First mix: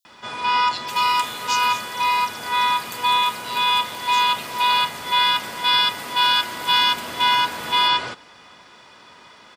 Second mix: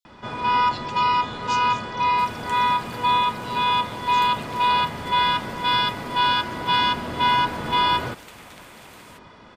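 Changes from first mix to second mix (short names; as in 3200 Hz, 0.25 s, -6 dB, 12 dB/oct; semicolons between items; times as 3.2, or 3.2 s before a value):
second sound: entry +1.30 s; master: add tilt -3.5 dB/oct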